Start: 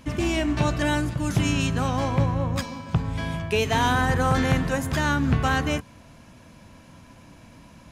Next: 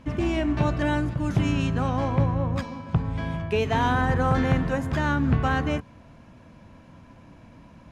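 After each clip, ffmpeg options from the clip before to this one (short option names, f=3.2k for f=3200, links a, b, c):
-af "lowpass=f=1.7k:p=1"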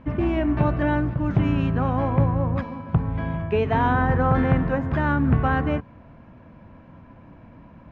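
-af "lowpass=2k,volume=2.5dB"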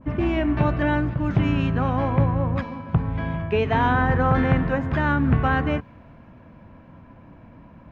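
-af "adynamicequalizer=threshold=0.0126:dfrequency=1600:dqfactor=0.7:tfrequency=1600:tqfactor=0.7:attack=5:release=100:ratio=0.375:range=2.5:mode=boostabove:tftype=highshelf"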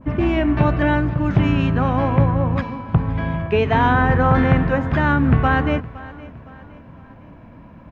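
-af "aecho=1:1:514|1028|1542:0.112|0.0471|0.0198,volume=4dB"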